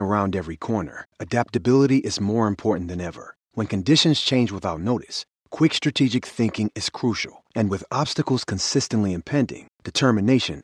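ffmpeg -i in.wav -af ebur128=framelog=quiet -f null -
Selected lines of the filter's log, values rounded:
Integrated loudness:
  I:         -22.4 LUFS
  Threshold: -32.7 LUFS
Loudness range:
  LRA:         2.8 LU
  Threshold: -42.8 LUFS
  LRA low:   -24.0 LUFS
  LRA high:  -21.2 LUFS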